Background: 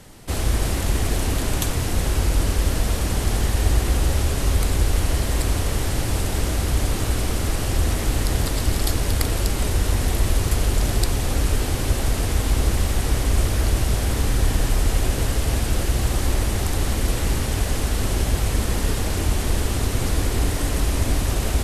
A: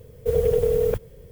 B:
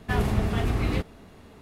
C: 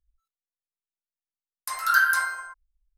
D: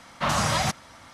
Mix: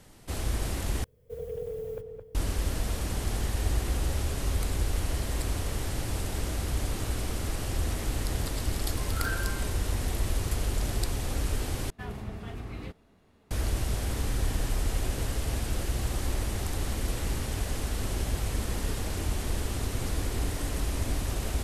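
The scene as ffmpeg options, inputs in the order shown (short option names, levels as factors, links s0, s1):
-filter_complex "[0:a]volume=0.355[s0];[1:a]asplit=2[s1][s2];[s2]adelay=216,lowpass=f=1900:p=1,volume=0.562,asplit=2[s3][s4];[s4]adelay=216,lowpass=f=1900:p=1,volume=0.35,asplit=2[s5][s6];[s6]adelay=216,lowpass=f=1900:p=1,volume=0.35,asplit=2[s7][s8];[s8]adelay=216,lowpass=f=1900:p=1,volume=0.35[s9];[s1][s3][s5][s7][s9]amix=inputs=5:normalize=0[s10];[s0]asplit=3[s11][s12][s13];[s11]atrim=end=1.044[s14];[s10]atrim=end=1.31,asetpts=PTS-STARTPTS,volume=0.141[s15];[s12]atrim=start=2.346:end=11.904[s16];[2:a]atrim=end=1.61,asetpts=PTS-STARTPTS,volume=0.211[s17];[s13]atrim=start=13.506[s18];[3:a]atrim=end=2.97,asetpts=PTS-STARTPTS,volume=0.168,afade=t=in:d=0.004:c=hsin,afade=t=out:st=2.966:d=0.004:c=hsin,adelay=321930S[s19];[s14][s15]acrossfade=d=0.004:c1=hsin:c2=hsin[s20];[s20][s16]acrossfade=d=0.004:c1=hsin:c2=hsin[s21];[s21][s17]acrossfade=d=0.004:c1=hsin:c2=hsin[s22];[s22][s18]acrossfade=d=0.004:c1=hsin:c2=hsin[s23];[s23][s19]amix=inputs=2:normalize=0"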